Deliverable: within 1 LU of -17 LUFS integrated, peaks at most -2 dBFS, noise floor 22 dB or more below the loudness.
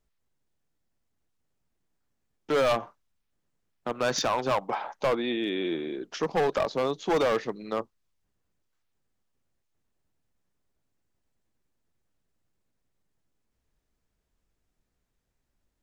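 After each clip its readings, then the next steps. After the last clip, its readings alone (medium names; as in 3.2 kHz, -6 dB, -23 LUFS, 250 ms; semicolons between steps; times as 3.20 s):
clipped samples 1.2%; clipping level -20.5 dBFS; loudness -28.5 LUFS; peak level -20.5 dBFS; loudness target -17.0 LUFS
-> clip repair -20.5 dBFS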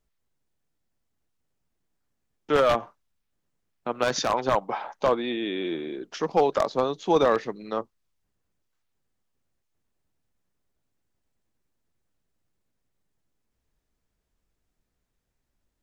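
clipped samples 0.0%; loudness -26.0 LUFS; peak level -11.5 dBFS; loudness target -17.0 LUFS
-> trim +9 dB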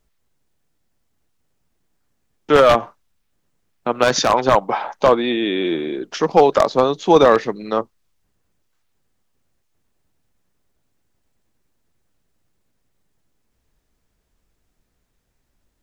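loudness -17.0 LUFS; peak level -2.5 dBFS; noise floor -70 dBFS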